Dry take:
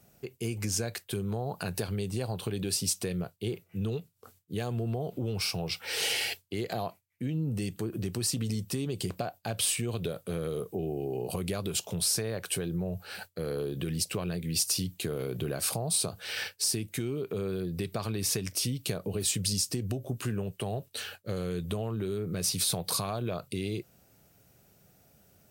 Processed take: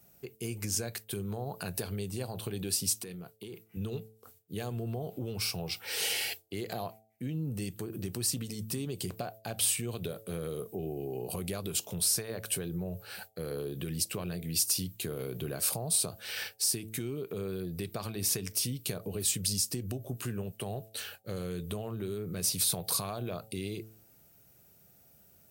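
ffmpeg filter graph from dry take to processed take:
ffmpeg -i in.wav -filter_complex "[0:a]asettb=1/sr,asplit=3[link_01][link_02][link_03];[link_01]atrim=end=2.984[link_04];[link_02]atrim=start=2.98:end=3.77,asetpts=PTS-STARTPTS,afade=type=in:duration=0.004:curve=qsin,afade=type=out:start_time=0.786:duration=0.004:curve=qsin,bandreject=frequency=580:width=5.1,acompressor=threshold=-34dB:ratio=10:attack=3.2:release=140:knee=1:detection=peak,highpass=130[link_05];[link_03]atrim=start=3.766[link_06];[link_04][link_05]acrossfade=duration=0.004:curve1=hsin:curve2=qsin[link_07];[link_07][link_06]acrossfade=duration=0.004:curve1=qsin:curve2=hsin,highshelf=frequency=11000:gain=11.5,bandreject=frequency=109.9:width_type=h:width=4,bandreject=frequency=219.8:width_type=h:width=4,bandreject=frequency=329.7:width_type=h:width=4,bandreject=frequency=439.6:width_type=h:width=4,bandreject=frequency=549.5:width_type=h:width=4,bandreject=frequency=659.4:width_type=h:width=4,bandreject=frequency=769.3:width_type=h:width=4,volume=-3.5dB" out.wav

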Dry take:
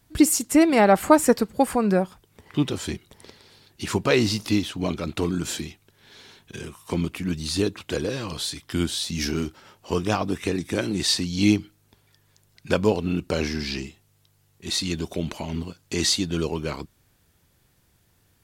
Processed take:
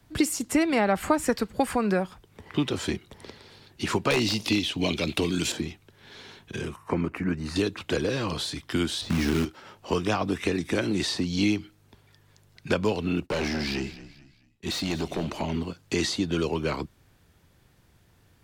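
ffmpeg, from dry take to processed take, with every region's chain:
ffmpeg -i in.wav -filter_complex "[0:a]asettb=1/sr,asplit=3[link_01][link_02][link_03];[link_01]atrim=end=4.104[link_04];[link_02]atrim=start=4.1:end=5.52,asetpts=PTS-STARTPTS,afade=type=in:duration=0.004:curve=qsin,afade=type=out:start_time=1.416:duration=0.004:curve=qsin,highshelf=frequency=1900:width_type=q:width=1.5:gain=10.5,bandreject=frequency=1300:width=16,aeval=exprs='0.355*(abs(mod(val(0)/0.355+3,4)-2)-1)':channel_layout=same[link_05];[link_03]atrim=start=5.516[link_06];[link_04][link_05]acrossfade=duration=0.004:curve1=hsin:curve2=qsin[link_07];[link_07][link_06]acrossfade=duration=0.004:curve1=qsin:curve2=hsin,asettb=1/sr,asplit=3[link_08][link_09][link_10];[link_08]atrim=end=6.764[link_11];[link_09]atrim=start=6.76:end=7.56,asetpts=PTS-STARTPTS,afade=type=in:duration=0.004:curve=qsin,afade=type=out:start_time=0.796:duration=0.004:curve=qsin,highshelf=frequency=2500:width_type=q:width=1.5:gain=-10.5,bandreject=frequency=3400:width=6.5[link_12];[link_10]atrim=start=7.556[link_13];[link_11][link_12]acrossfade=duration=0.004:curve1=hsin:curve2=qsin[link_14];[link_14][link_13]acrossfade=duration=0.004:curve1=qsin:curve2=hsin,asettb=1/sr,asplit=3[link_15][link_16][link_17];[link_15]atrim=end=9.014[link_18];[link_16]atrim=start=9.01:end=9.45,asetpts=PTS-STARTPTS,afade=type=in:duration=0.004:curve=qsin,afade=type=out:start_time=0.436:duration=0.004:curve=qsin,aemphasis=mode=reproduction:type=riaa,acrusher=bits=4:mode=log:mix=0:aa=0.000001[link_19];[link_17]atrim=start=9.446[link_20];[link_18][link_19]acrossfade=duration=0.004:curve1=hsin:curve2=qsin[link_21];[link_21][link_20]acrossfade=duration=0.004:curve1=qsin:curve2=hsin,asettb=1/sr,asplit=3[link_22][link_23][link_24];[link_22]atrim=end=13.224[link_25];[link_23]atrim=start=13.22:end=15.42,asetpts=PTS-STARTPTS,afade=type=in:duration=0.004:curve=qsin,afade=type=out:start_time=2.196:duration=0.004:curve=qsin,agate=range=-19dB:threshold=-52dB:ratio=16:release=100:detection=peak,volume=26dB,asoftclip=hard,volume=-26dB,asplit=4[link_26][link_27][link_28][link_29];[link_27]adelay=219,afreqshift=-30,volume=-17dB[link_30];[link_28]adelay=438,afreqshift=-60,volume=-25.4dB[link_31];[link_29]adelay=657,afreqshift=-90,volume=-33.8dB[link_32];[link_26][link_30][link_31][link_32]amix=inputs=4:normalize=0,atrim=end_sample=97020[link_33];[link_24]atrim=start=15.416[link_34];[link_25][link_33]acrossfade=duration=0.004:curve1=hsin:curve2=qsin[link_35];[link_35][link_34]acrossfade=duration=0.004:curve1=qsin:curve2=hsin,highshelf=frequency=5600:gain=-10,acrossover=split=96|240|1300[link_36][link_37][link_38][link_39];[link_36]acompressor=threshold=-46dB:ratio=4[link_40];[link_37]acompressor=threshold=-38dB:ratio=4[link_41];[link_38]acompressor=threshold=-29dB:ratio=4[link_42];[link_39]acompressor=threshold=-33dB:ratio=4[link_43];[link_40][link_41][link_42][link_43]amix=inputs=4:normalize=0,volume=4dB" out.wav

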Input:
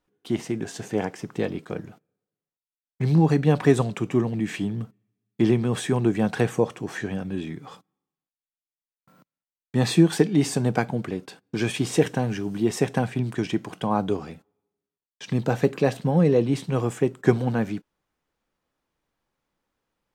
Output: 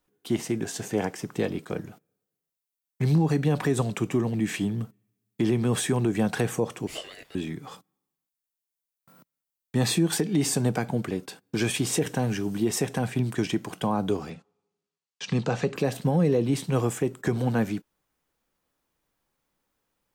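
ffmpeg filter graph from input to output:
ffmpeg -i in.wav -filter_complex "[0:a]asettb=1/sr,asplit=3[link_01][link_02][link_03];[link_01]atrim=end=6.874[link_04];[link_02]atrim=start=6.87:end=7.35,asetpts=PTS-STARTPTS,afade=type=in:duration=0.004:curve=qsin,afade=type=out:start_time=0.476:duration=0.004:curve=qsin,highpass=frequency=730:width=0.5412,highpass=frequency=730:width=1.3066,aeval=exprs='val(0)*sin(2*PI*1200*n/s)':channel_layout=same[link_05];[link_03]atrim=start=7.346[link_06];[link_04][link_05]acrossfade=duration=0.004:curve1=hsin:curve2=qsin[link_07];[link_07][link_06]acrossfade=duration=0.004:curve1=qsin:curve2=hsin,asettb=1/sr,asplit=3[link_08][link_09][link_10];[link_08]atrim=end=14.304[link_11];[link_09]atrim=start=14.3:end=15.76,asetpts=PTS-STARTPTS,afade=type=in:duration=0.004:curve=qsin,afade=type=out:start_time=1.456:duration=0.004:curve=qsin,highpass=110,equalizer=frequency=170:width_type=q:width=4:gain=4,equalizer=frequency=290:width_type=q:width=4:gain=-5,equalizer=frequency=610:width_type=q:width=4:gain=5,equalizer=frequency=1200:width_type=q:width=4:gain=4,equalizer=frequency=2700:width_type=q:width=4:gain=4,equalizer=frequency=4500:width_type=q:width=4:gain=3,lowpass=frequency=7500:width=0.5412,lowpass=frequency=7500:width=1.3066,bandreject=frequency=610:width=7.5[link_12];[link_10]atrim=start=15.756[link_13];[link_11][link_12]acrossfade=duration=0.004:curve1=hsin:curve2=qsin[link_14];[link_14][link_13]acrossfade=duration=0.004:curve1=qsin:curve2=hsin,highshelf=frequency=7900:gain=11.5,acrossover=split=410[link_15][link_16];[link_16]acompressor=threshold=-22dB:ratio=6[link_17];[link_15][link_17]amix=inputs=2:normalize=0,alimiter=limit=-14dB:level=0:latency=1:release=96" out.wav

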